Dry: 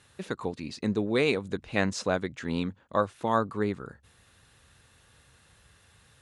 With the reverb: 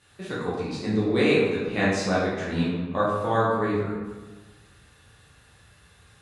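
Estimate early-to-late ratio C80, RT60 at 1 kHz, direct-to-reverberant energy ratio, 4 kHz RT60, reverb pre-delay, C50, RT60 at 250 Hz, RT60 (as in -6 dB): 2.5 dB, 1.3 s, -8.5 dB, 0.85 s, 8 ms, -0.5 dB, 1.5 s, 1.3 s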